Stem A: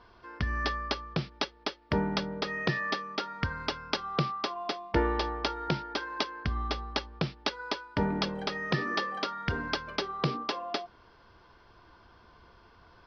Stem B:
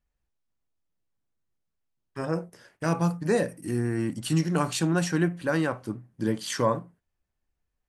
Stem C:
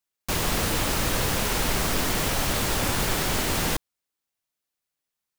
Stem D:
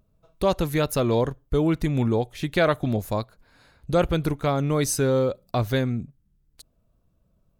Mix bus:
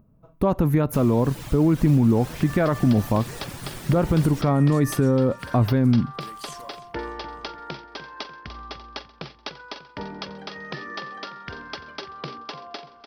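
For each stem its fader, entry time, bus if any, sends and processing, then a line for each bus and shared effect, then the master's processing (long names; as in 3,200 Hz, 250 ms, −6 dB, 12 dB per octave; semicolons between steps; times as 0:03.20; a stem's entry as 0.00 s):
−3.0 dB, 2.00 s, no send, echo send −11 dB, low-shelf EQ 260 Hz −7.5 dB
−10.5 dB, 0.00 s, no send, echo send −20.5 dB, spectral tilt +4 dB per octave; bit reduction 7 bits; downward compressor 5 to 1, threshold −30 dBFS, peak gain reduction 12 dB
−12.0 dB, 0.65 s, no send, no echo send, reverb reduction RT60 0.87 s; parametric band 140 Hz +12 dB
+2.0 dB, 0.00 s, no send, no echo send, octave-band graphic EQ 125/250/1,000/4,000/8,000 Hz +7/+10/+6/−11/−10 dB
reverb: not used
echo: repeating echo 296 ms, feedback 49%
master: brickwall limiter −10 dBFS, peak gain reduction 9 dB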